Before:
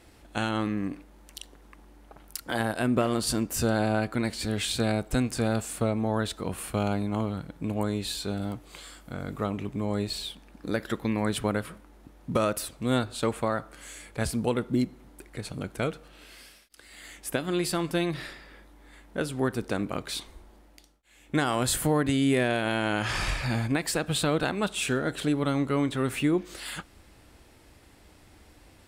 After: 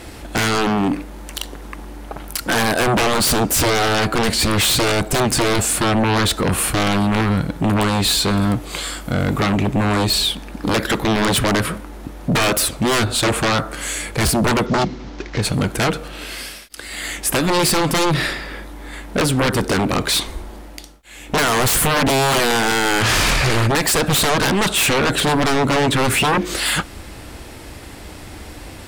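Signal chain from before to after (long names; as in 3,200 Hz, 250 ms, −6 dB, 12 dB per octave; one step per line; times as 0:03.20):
0:14.66–0:15.42: variable-slope delta modulation 32 kbit/s
sine wavefolder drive 17 dB, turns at −11.5 dBFS
level −1.5 dB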